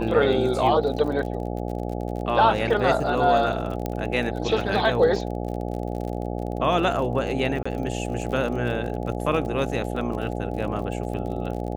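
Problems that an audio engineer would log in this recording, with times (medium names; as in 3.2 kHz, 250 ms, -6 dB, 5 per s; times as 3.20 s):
buzz 60 Hz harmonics 14 -29 dBFS
crackle 39 per s -32 dBFS
3.86 s: pop -14 dBFS
7.63–7.66 s: dropout 25 ms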